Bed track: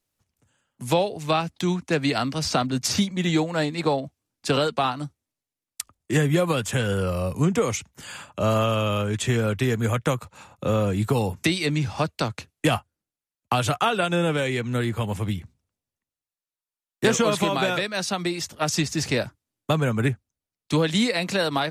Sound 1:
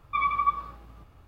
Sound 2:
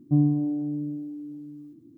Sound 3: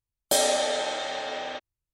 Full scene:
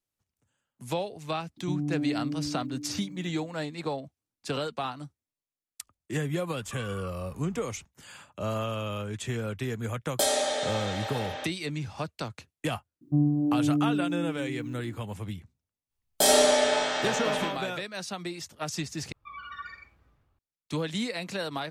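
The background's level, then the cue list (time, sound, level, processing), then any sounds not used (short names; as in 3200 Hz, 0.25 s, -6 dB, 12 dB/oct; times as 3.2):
bed track -9.5 dB
1.57 add 2 -2.5 dB + limiter -21 dBFS
6.58 add 1 -6 dB + compressor, threshold -38 dBFS
9.88 add 3 -3 dB
13.01 add 2 -4 dB + AGC gain up to 10 dB
15.89 add 3 -1.5 dB + shoebox room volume 200 m³, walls mixed, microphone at 1.5 m
19.12 replace with 1 -18 dB + echoes that change speed 0.155 s, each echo +4 st, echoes 3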